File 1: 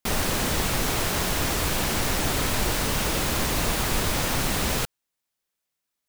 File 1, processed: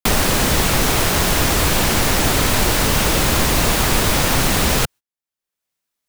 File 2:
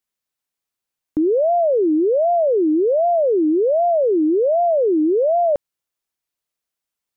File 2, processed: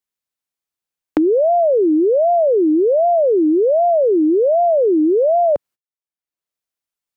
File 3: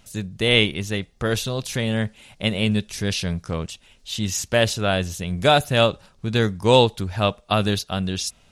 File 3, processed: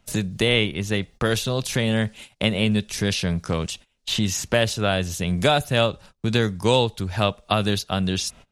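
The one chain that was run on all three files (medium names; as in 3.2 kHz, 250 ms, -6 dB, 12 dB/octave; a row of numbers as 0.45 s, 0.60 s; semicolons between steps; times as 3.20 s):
gate -43 dBFS, range -27 dB; three bands compressed up and down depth 70%; peak normalisation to -3 dBFS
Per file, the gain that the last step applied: +8.5 dB, +2.5 dB, -0.5 dB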